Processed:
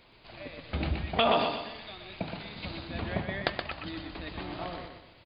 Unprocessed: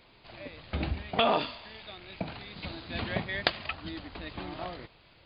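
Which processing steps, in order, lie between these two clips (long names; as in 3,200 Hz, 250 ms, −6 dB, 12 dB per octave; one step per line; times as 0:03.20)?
0:02.87–0:03.74: high-shelf EQ 2,300 Hz −9.5 dB
repeating echo 123 ms, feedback 40%, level −5.5 dB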